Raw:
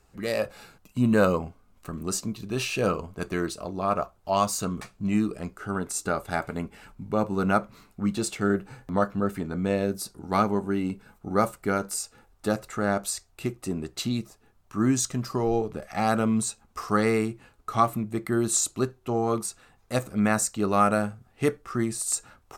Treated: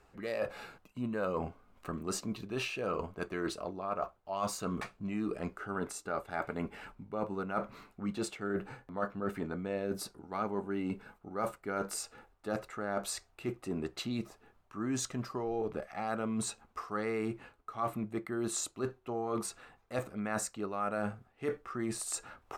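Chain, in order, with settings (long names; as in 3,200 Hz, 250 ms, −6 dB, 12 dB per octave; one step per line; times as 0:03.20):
bass and treble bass −7 dB, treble −11 dB
reversed playback
downward compressor 6 to 1, threshold −35 dBFS, peak gain reduction 18 dB
reversed playback
level +2.5 dB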